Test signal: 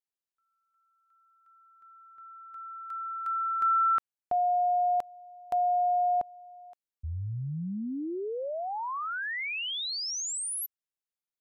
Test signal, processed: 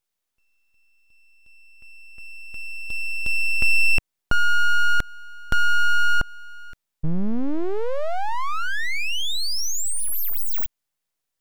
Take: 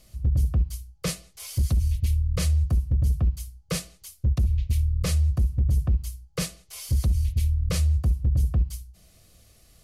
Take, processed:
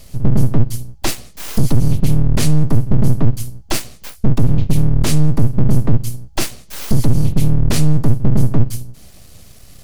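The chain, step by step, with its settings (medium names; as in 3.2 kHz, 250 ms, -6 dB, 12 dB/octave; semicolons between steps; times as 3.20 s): bass shelf 100 Hz +5.5 dB; in parallel at -3 dB: compression, threshold -29 dBFS; on the sum: full-wave rectifier; trim +8.5 dB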